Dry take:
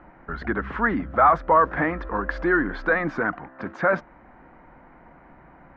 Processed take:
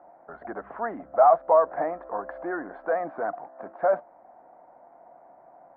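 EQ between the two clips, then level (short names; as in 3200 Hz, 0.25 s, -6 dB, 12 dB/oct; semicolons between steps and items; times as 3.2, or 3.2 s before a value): band-pass 680 Hz, Q 5.2; air absorption 340 m; +8.0 dB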